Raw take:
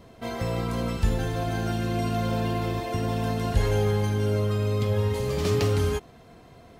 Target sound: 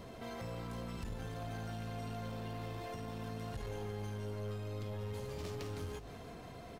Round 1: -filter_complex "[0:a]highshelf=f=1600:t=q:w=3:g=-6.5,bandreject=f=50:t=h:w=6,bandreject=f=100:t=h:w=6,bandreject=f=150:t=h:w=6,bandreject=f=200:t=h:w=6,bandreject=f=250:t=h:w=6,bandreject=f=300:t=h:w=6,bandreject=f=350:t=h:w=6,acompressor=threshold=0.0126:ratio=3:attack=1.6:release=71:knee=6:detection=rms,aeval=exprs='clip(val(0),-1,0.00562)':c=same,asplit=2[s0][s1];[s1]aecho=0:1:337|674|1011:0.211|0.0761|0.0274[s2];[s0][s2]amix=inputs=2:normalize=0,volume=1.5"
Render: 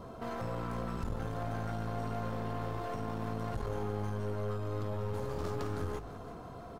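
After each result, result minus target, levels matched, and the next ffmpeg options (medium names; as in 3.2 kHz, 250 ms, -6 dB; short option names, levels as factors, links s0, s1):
compression: peak gain reduction -7 dB; 4 kHz band -7.0 dB
-filter_complex "[0:a]highshelf=f=1600:t=q:w=3:g=-6.5,bandreject=f=50:t=h:w=6,bandreject=f=100:t=h:w=6,bandreject=f=150:t=h:w=6,bandreject=f=200:t=h:w=6,bandreject=f=250:t=h:w=6,bandreject=f=300:t=h:w=6,bandreject=f=350:t=h:w=6,acompressor=threshold=0.00376:ratio=3:attack=1.6:release=71:knee=6:detection=rms,aeval=exprs='clip(val(0),-1,0.00562)':c=same,asplit=2[s0][s1];[s1]aecho=0:1:337|674|1011:0.211|0.0761|0.0274[s2];[s0][s2]amix=inputs=2:normalize=0,volume=1.5"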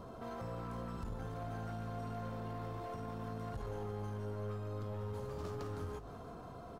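4 kHz band -7.5 dB
-filter_complex "[0:a]bandreject=f=50:t=h:w=6,bandreject=f=100:t=h:w=6,bandreject=f=150:t=h:w=6,bandreject=f=200:t=h:w=6,bandreject=f=250:t=h:w=6,bandreject=f=300:t=h:w=6,bandreject=f=350:t=h:w=6,acompressor=threshold=0.00376:ratio=3:attack=1.6:release=71:knee=6:detection=rms,aeval=exprs='clip(val(0),-1,0.00562)':c=same,asplit=2[s0][s1];[s1]aecho=0:1:337|674|1011:0.211|0.0761|0.0274[s2];[s0][s2]amix=inputs=2:normalize=0,volume=1.5"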